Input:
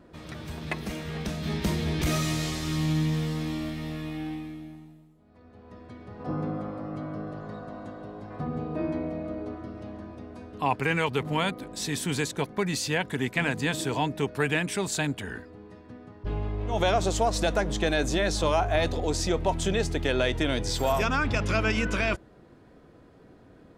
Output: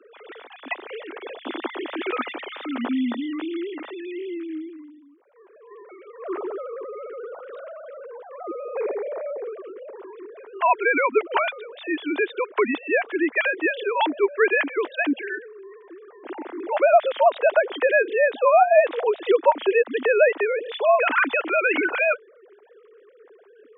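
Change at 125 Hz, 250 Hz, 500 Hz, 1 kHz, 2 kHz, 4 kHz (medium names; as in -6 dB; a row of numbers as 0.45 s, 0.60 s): under -30 dB, +0.5 dB, +8.5 dB, +7.5 dB, +7.5 dB, -4.5 dB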